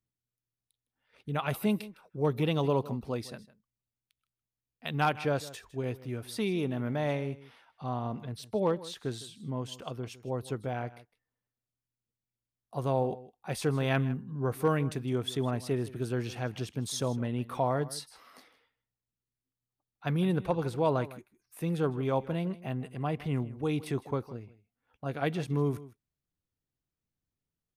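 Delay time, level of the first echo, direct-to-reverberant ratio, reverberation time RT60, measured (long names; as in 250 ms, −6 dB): 158 ms, −18.0 dB, no reverb audible, no reverb audible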